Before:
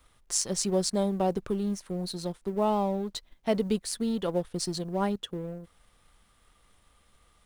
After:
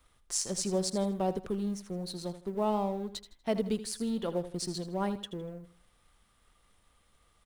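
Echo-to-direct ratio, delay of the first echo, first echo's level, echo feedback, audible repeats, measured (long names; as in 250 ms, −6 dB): −12.5 dB, 80 ms, −13.0 dB, 32%, 3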